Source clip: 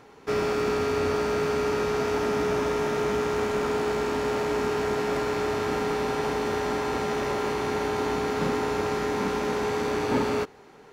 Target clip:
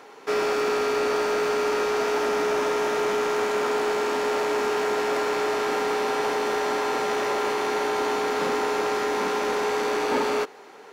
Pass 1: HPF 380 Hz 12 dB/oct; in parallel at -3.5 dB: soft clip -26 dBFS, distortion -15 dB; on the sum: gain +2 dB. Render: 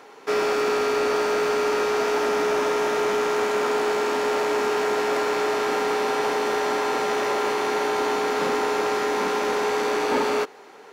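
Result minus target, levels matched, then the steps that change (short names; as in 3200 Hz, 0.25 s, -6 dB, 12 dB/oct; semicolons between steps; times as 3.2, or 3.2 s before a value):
soft clip: distortion -7 dB
change: soft clip -34.5 dBFS, distortion -8 dB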